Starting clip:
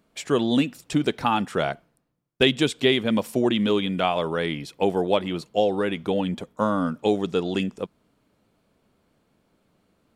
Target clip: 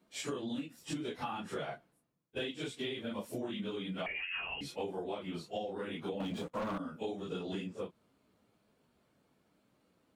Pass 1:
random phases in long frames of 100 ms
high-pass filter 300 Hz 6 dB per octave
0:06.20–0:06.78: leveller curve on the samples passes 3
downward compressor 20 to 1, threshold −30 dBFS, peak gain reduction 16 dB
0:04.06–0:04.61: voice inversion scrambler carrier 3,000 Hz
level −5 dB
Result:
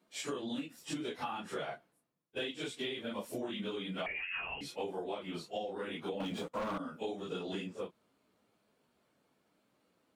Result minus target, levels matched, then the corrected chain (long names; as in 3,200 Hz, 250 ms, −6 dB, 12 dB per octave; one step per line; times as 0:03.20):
125 Hz band −3.0 dB
random phases in long frames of 100 ms
high-pass filter 90 Hz 6 dB per octave
0:06.20–0:06.78: leveller curve on the samples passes 3
downward compressor 20 to 1, threshold −30 dBFS, peak gain reduction 17.5 dB
0:04.06–0:04.61: voice inversion scrambler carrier 3,000 Hz
level −5 dB